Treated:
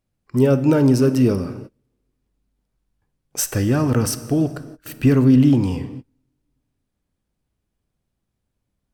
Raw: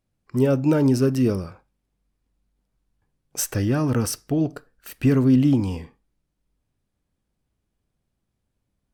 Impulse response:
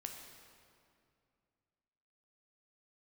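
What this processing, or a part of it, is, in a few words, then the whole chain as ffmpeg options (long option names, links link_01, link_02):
keyed gated reverb: -filter_complex "[0:a]asplit=3[link_01][link_02][link_03];[1:a]atrim=start_sample=2205[link_04];[link_02][link_04]afir=irnorm=-1:irlink=0[link_05];[link_03]apad=whole_len=394229[link_06];[link_05][link_06]sidechaingate=range=-33dB:threshold=-53dB:ratio=16:detection=peak,volume=-2dB[link_07];[link_01][link_07]amix=inputs=2:normalize=0"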